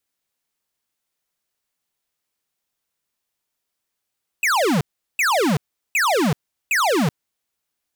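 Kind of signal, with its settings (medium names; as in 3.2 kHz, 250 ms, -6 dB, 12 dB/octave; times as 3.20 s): burst of laser zaps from 2.7 kHz, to 130 Hz, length 0.38 s square, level -18 dB, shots 4, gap 0.38 s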